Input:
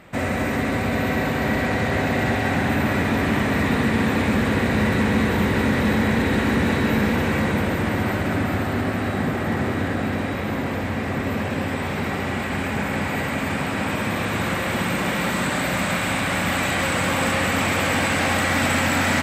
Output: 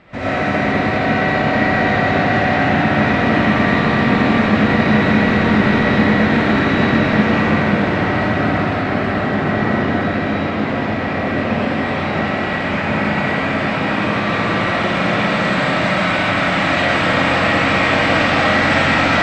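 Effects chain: LPF 5300 Hz 24 dB/oct; reverb RT60 0.90 s, pre-delay 50 ms, DRR -8 dB; gain -1.5 dB

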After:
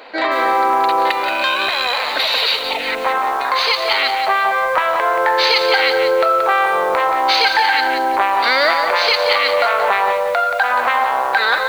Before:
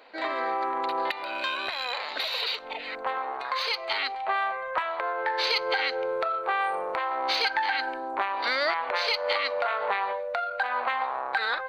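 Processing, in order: in parallel at +2 dB: limiter -25.5 dBFS, peak gain reduction 11.5 dB; on the sum: lo-fi delay 0.178 s, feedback 35%, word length 7-bit, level -6.5 dB; gain +7.5 dB

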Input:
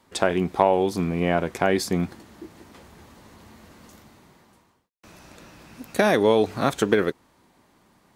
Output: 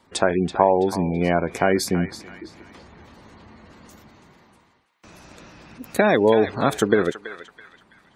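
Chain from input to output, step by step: spectral gate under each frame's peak -25 dB strong; high shelf 10000 Hz +4.5 dB; narrowing echo 0.33 s, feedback 43%, band-pass 2500 Hz, level -8 dB; gain +2 dB

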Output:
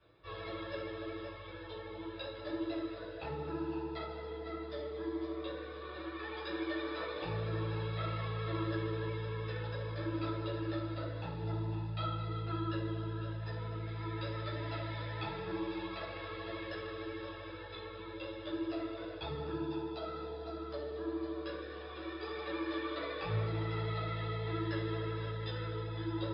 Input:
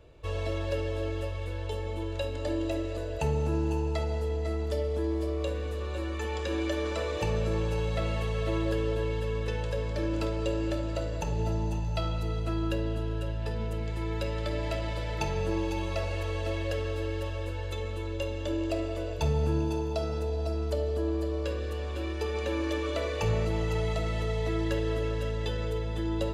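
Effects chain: reverse; upward compressor, threshold -41 dBFS; reverse; rippled Chebyshev low-pass 5100 Hz, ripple 9 dB; vibrato 13 Hz 49 cents; reverb RT60 0.35 s, pre-delay 9 ms, DRR -6.5 dB; gain -5.5 dB

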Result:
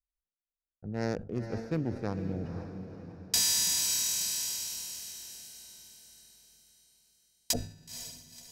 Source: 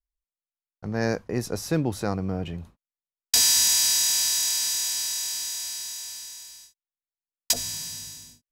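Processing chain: Wiener smoothing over 41 samples; diffused feedback echo 0.506 s, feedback 46%, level -8 dB; sustainer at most 120 dB/s; gain -6.5 dB

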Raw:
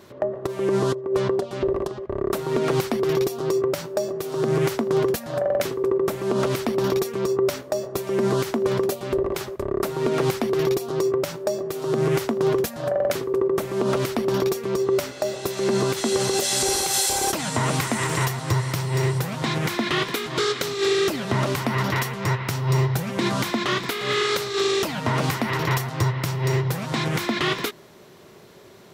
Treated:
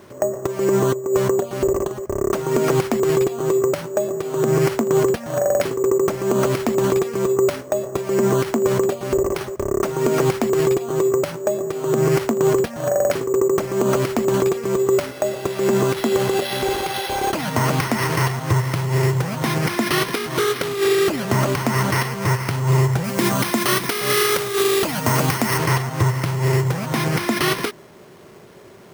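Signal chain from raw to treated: careless resampling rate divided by 6×, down filtered, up hold; 23.04–25.58 high shelf 6300 Hz +7.5 dB; gain +4 dB

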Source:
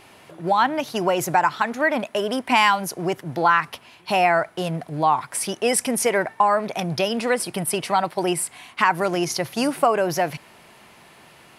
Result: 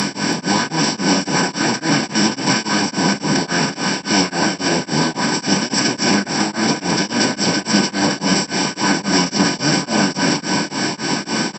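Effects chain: per-bin compression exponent 0.2; bell 240 Hz -10 dB 1.4 oct; LFO notch saw up 5.2 Hz 600–1600 Hz; formant-preserving pitch shift -11.5 st; HPF 110 Hz 24 dB/oct; bell 870 Hz -12.5 dB 1.9 oct; echo 0.327 s -9 dB; reverb RT60 0.70 s, pre-delay 3 ms, DRR 2.5 dB; beating tremolo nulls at 3.6 Hz; gain -3.5 dB

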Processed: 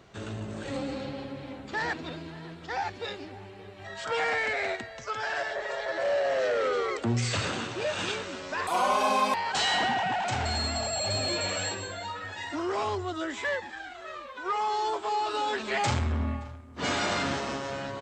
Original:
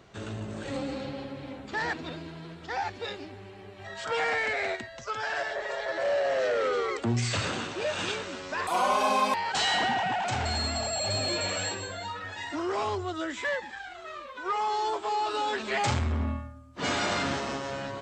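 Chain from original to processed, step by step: outdoor echo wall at 98 m, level -20 dB

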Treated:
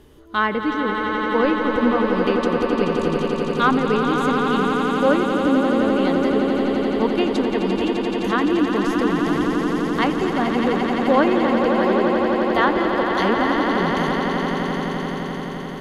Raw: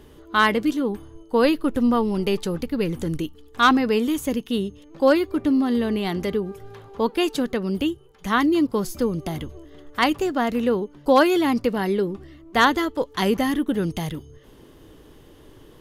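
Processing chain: treble ducked by the level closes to 2200 Hz, closed at -14.5 dBFS; swelling echo 86 ms, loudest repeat 8, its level -8 dB; gain -1.5 dB

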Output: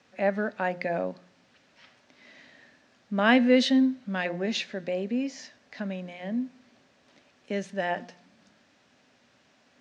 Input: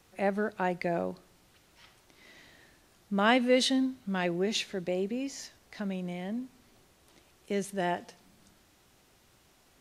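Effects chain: speaker cabinet 140–6200 Hz, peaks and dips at 250 Hz +9 dB, 350 Hz -6 dB, 580 Hz +6 dB, 1700 Hz +6 dB, 2500 Hz +3 dB; de-hum 177.4 Hz, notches 12

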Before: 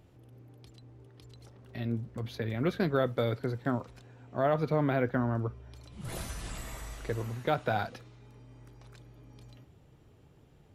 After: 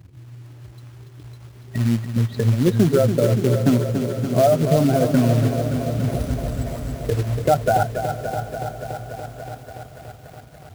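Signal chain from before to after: spectral contrast raised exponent 2.1; HPF 50 Hz 24 dB/oct; notch 480 Hz, Q 12; in parallel at +1.5 dB: limiter -27.5 dBFS, peak gain reduction 10 dB; on the sum: transient shaper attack +4 dB, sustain -10 dB; short-mantissa float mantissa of 2-bit; on a send: diffused feedback echo 0.597 s, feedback 54%, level -14 dB; on the sum: lo-fi delay 0.286 s, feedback 80%, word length 9-bit, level -8 dB; gain +7 dB

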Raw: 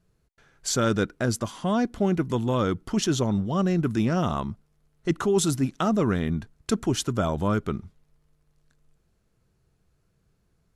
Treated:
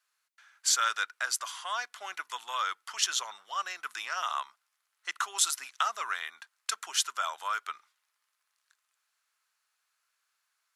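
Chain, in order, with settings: HPF 1100 Hz 24 dB/oct; gain +2.5 dB

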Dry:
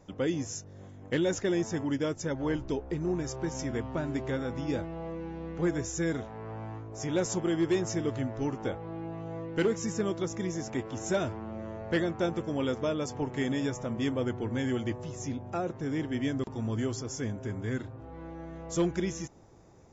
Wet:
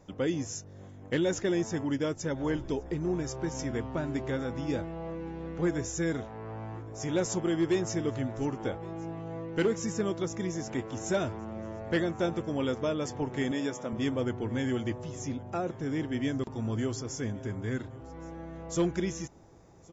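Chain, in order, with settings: 13.51–13.93 HPF 200 Hz 12 dB/oct; on a send: echo 1.118 s -23.5 dB

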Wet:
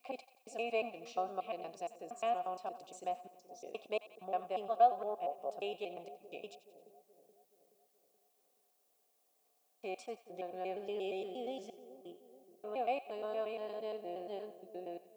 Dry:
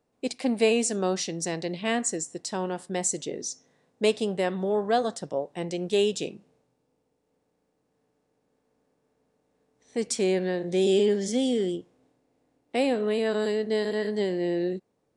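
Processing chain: slices in reverse order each 0.117 s, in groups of 4; vowel filter a; on a send: split-band echo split 710 Hz, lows 0.426 s, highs 89 ms, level -14.5 dB; on the sum: added noise blue -77 dBFS

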